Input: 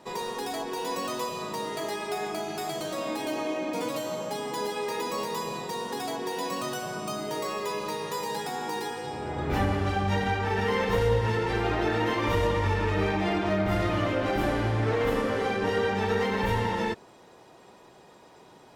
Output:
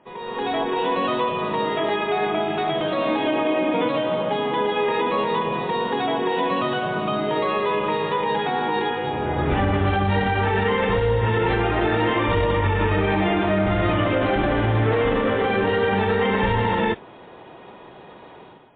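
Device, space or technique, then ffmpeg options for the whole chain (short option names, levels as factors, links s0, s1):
low-bitrate web radio: -af "dynaudnorm=f=100:g=7:m=4.47,alimiter=limit=0.355:level=0:latency=1:release=38,volume=0.75" -ar 8000 -c:a libmp3lame -b:a 24k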